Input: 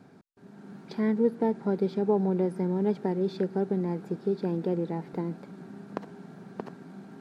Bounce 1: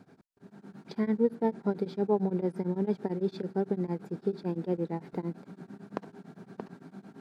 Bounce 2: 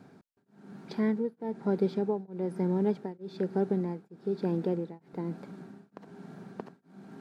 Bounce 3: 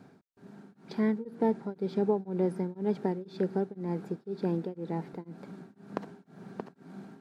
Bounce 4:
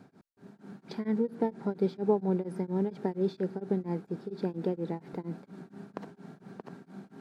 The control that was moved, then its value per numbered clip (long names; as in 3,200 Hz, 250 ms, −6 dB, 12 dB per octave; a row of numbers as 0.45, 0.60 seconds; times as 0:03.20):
tremolo along a rectified sine, nulls at: 8.9, 1.1, 2, 4.3 Hertz